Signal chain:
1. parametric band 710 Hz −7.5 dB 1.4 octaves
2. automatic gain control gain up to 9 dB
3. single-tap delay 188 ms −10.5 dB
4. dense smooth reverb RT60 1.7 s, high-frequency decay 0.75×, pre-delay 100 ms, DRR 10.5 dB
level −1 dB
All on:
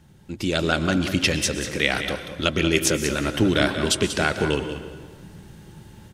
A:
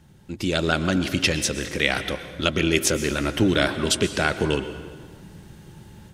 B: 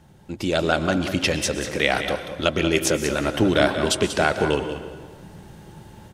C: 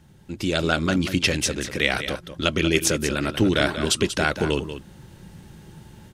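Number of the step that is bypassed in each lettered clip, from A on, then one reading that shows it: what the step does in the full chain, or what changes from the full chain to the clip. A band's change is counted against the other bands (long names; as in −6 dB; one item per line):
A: 3, echo-to-direct ratio −7.5 dB to −10.5 dB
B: 1, 1 kHz band +4.0 dB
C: 4, echo-to-direct ratio −7.5 dB to −10.5 dB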